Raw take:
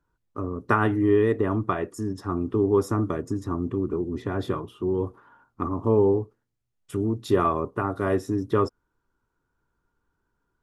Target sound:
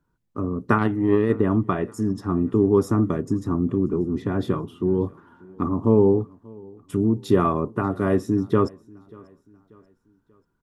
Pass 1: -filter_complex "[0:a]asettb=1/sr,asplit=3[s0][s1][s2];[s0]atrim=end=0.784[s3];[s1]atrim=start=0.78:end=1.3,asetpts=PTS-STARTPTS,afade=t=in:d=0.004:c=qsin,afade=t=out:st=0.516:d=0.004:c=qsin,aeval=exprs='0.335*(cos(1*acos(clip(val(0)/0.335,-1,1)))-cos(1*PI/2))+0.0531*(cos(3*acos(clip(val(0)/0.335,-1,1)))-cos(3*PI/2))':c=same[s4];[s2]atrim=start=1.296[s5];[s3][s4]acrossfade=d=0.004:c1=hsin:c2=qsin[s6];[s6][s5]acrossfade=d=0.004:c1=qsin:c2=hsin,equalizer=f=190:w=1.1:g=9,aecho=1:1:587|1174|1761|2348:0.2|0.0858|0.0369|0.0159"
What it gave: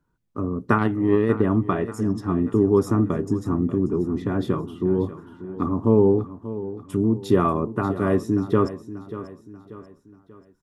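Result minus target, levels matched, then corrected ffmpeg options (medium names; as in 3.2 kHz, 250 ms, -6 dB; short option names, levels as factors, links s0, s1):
echo-to-direct +11 dB
-filter_complex "[0:a]asettb=1/sr,asplit=3[s0][s1][s2];[s0]atrim=end=0.784[s3];[s1]atrim=start=0.78:end=1.3,asetpts=PTS-STARTPTS,afade=t=in:d=0.004:c=qsin,afade=t=out:st=0.516:d=0.004:c=qsin,aeval=exprs='0.335*(cos(1*acos(clip(val(0)/0.335,-1,1)))-cos(1*PI/2))+0.0531*(cos(3*acos(clip(val(0)/0.335,-1,1)))-cos(3*PI/2))':c=same[s4];[s2]atrim=start=1.296[s5];[s3][s4]acrossfade=d=0.004:c1=hsin:c2=qsin[s6];[s6][s5]acrossfade=d=0.004:c1=qsin:c2=hsin,equalizer=f=190:w=1.1:g=9,aecho=1:1:587|1174|1761:0.0562|0.0242|0.0104"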